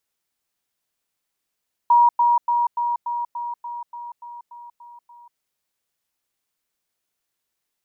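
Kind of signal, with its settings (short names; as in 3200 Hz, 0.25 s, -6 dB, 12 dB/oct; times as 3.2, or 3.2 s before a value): level ladder 954 Hz -10.5 dBFS, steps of -3 dB, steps 12, 0.19 s 0.10 s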